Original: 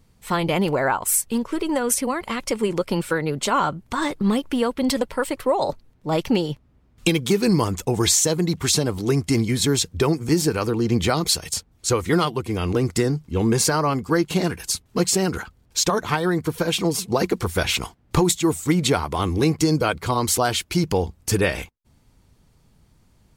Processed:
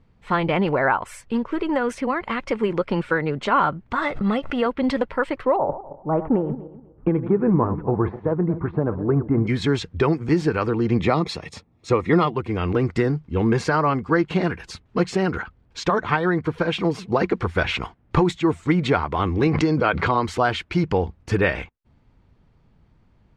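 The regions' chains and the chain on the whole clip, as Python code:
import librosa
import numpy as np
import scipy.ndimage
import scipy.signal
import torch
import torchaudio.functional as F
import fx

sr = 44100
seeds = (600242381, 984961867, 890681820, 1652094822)

y = fx.chain(x, sr, fx.low_shelf(hz=92.0, db=-8.5),
    fx.comb(ms=1.5, depth=0.48),
    fx.pre_swell(db_per_s=84.0), at=(3.96, 4.66))
y = fx.chain(y, sr, fx.reverse_delay_fb(ms=124, feedback_pct=45, wet_db=-12),
    fx.lowpass(hz=1300.0, slope=24), at=(5.56, 9.47))
y = fx.chain(y, sr, fx.highpass(hz=170.0, slope=6),
    fx.low_shelf(hz=220.0, db=12.0),
    fx.notch_comb(f0_hz=1500.0), at=(10.99, 12.34))
y = fx.chain(y, sr, fx.lowpass(hz=6500.0, slope=12),
    fx.low_shelf(hz=95.0, db=-9.5),
    fx.pre_swell(db_per_s=34.0), at=(19.47, 20.25))
y = fx.dynamic_eq(y, sr, hz=1700.0, q=0.95, threshold_db=-38.0, ratio=4.0, max_db=4)
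y = scipy.signal.sosfilt(scipy.signal.butter(2, 2500.0, 'lowpass', fs=sr, output='sos'), y)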